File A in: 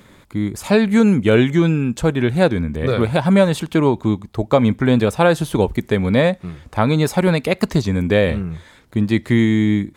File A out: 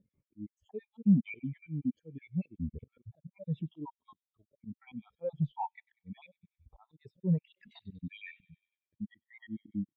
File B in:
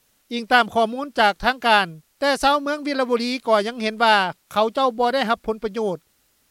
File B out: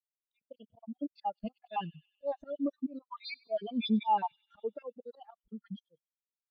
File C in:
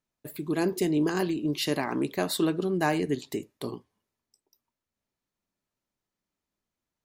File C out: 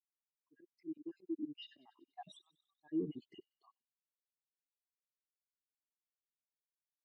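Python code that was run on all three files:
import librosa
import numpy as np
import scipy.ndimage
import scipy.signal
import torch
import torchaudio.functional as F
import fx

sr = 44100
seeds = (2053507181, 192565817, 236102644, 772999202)

y = fx.spec_dropout(x, sr, seeds[0], share_pct=54)
y = scipy.signal.sosfilt(scipy.signal.butter(2, 7500.0, 'lowpass', fs=sr, output='sos'), y)
y = fx.auto_swell(y, sr, attack_ms=650.0)
y = fx.peak_eq(y, sr, hz=3100.0, db=4.0, octaves=0.79)
y = fx.echo_wet_highpass(y, sr, ms=96, feedback_pct=81, hz=2400.0, wet_db=-10.5)
y = fx.leveller(y, sr, passes=2)
y = fx.high_shelf(y, sr, hz=4200.0, db=-3.5)
y = fx.notch(y, sr, hz=1500.0, q=7.0)
y = fx.leveller(y, sr, passes=1)
y = fx.spectral_expand(y, sr, expansion=2.5)
y = F.gain(torch.from_numpy(y), 1.0).numpy()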